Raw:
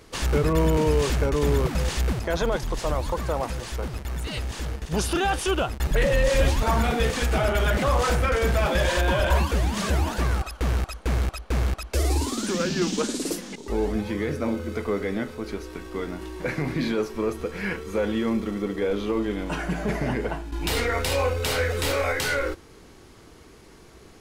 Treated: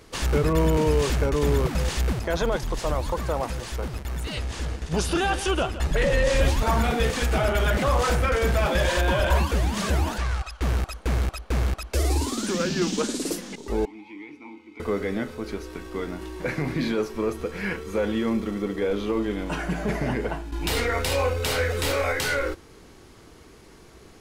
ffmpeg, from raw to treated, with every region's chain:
-filter_complex "[0:a]asettb=1/sr,asplit=3[a][b][c];[a]atrim=end=4.344[d];[b]atrim=start=4.34:end=6.41,asetpts=PTS-STARTPTS,afade=t=in:d=0.004:c=qsin,afade=t=out:st=2.066:d=0.004:c=qsin,lowpass=10k,asplit=2[e][f];[f]adelay=12,volume=-12.5dB[g];[e][g]amix=inputs=2:normalize=0,atrim=end_sample=91287,aecho=1:1:167:0.211,atrim=end_sample=91287[h];[c]atrim=start=6.406[i];[d][h]acrossfade=d=0.004:c1=hsin:c2=qsin[j];[j][i]acrossfade=d=0.004:c1=qsin:c2=hsin,asettb=1/sr,asplit=3[k][l][m];[k]atrim=end=10.184[n];[l]atrim=start=10.18:end=10.62,asetpts=PTS-STARTPTS,afade=t=in:d=0.004:c=qsin,afade=t=out:st=0.436:d=0.004:c=qsin,lowpass=7.5k,equalizer=f=270:t=o:w=2.1:g=-13[o];[m]atrim=start=10.616[p];[n][o]acrossfade=d=0.004:c1=hsin:c2=qsin[q];[q][p]acrossfade=d=0.004:c1=qsin:c2=hsin,asettb=1/sr,asplit=3[r][s][t];[r]atrim=end=13.854[u];[s]atrim=start=13.85:end=14.8,asetpts=PTS-STARTPTS,afade=t=in:d=0.004:c=qsin,afade=t=out:st=0.946:d=0.004:c=qsin,asplit=3[v][w][x];[v]bandpass=f=300:t=q:w=8,volume=0dB[y];[w]bandpass=f=870:t=q:w=8,volume=-6dB[z];[x]bandpass=f=2.24k:t=q:w=8,volume=-9dB[aa];[y][z][aa]amix=inputs=3:normalize=0,tiltshelf=f=790:g=-9,bandreject=f=1.2k:w=17[ab];[t]atrim=start=14.796[ac];[u][ab]acrossfade=d=0.004:c1=hsin:c2=qsin[ad];[ad][ac]acrossfade=d=0.004:c1=qsin:c2=hsin"

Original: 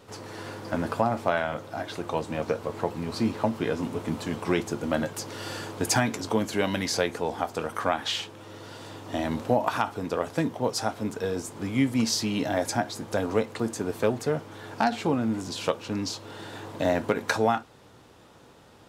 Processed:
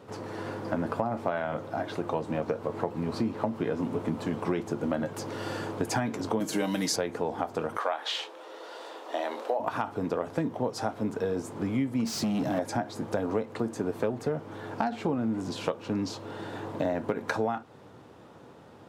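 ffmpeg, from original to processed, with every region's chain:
-filter_complex "[0:a]asettb=1/sr,asplit=3[a][b][c];[a]atrim=end=6.404[d];[b]atrim=start=6.4:end=6.96,asetpts=PTS-STARTPTS,afade=t=in:d=0.004:c=qsin,afade=t=out:st=0.556:d=0.004:c=qsin,highpass=180,bass=f=250:g=5,treble=f=4k:g=14,aecho=1:1:6.4:0.56,atrim=end_sample=24696[e];[c]atrim=start=6.956[f];[d][e]acrossfade=d=0.004:c1=hsin:c2=qsin[g];[g][f]acrossfade=d=0.004:c1=qsin:c2=hsin,asettb=1/sr,asplit=3[h][i][j];[h]atrim=end=7.774[k];[i]atrim=start=7.77:end=9.6,asetpts=PTS-STARTPTS,afade=t=in:d=0.004:c=qsin,afade=t=out:st=1.826:d=0.004:c=qsin,highpass=f=430:w=0.5412,highpass=f=430:w=1.3066,equalizer=f=3.9k:w=2:g=4,asplit=2[l][m];[m]adelay=27,volume=-14dB[n];[l][n]amix=inputs=2:normalize=0,atrim=end_sample=80703[o];[j]atrim=start=9.596[p];[k][o]acrossfade=d=0.004:c1=hsin:c2=qsin[q];[q][p]acrossfade=d=0.004:c1=qsin:c2=hsin,asettb=1/sr,asplit=3[r][s][t];[r]atrim=end=12.054[u];[s]atrim=start=12.05:end=12.59,asetpts=PTS-STARTPTS,afade=t=in:d=0.004:c=qsin,afade=t=out:st=0.536:d=0.004:c=qsin,highpass=f=130:w=0.5412,highpass=f=130:w=1.3066,bass=f=250:g=11,treble=f=4k:g=9,volume=23dB,asoftclip=hard,volume=-23dB[v];[t]atrim=start=12.586[w];[u][v]acrossfade=d=0.004:c1=hsin:c2=qsin[x];[x][w]acrossfade=d=0.004:c1=qsin:c2=hsin,highpass=100,highshelf=f=2.1k:g=-12,acompressor=threshold=-30dB:ratio=4,volume=4dB"

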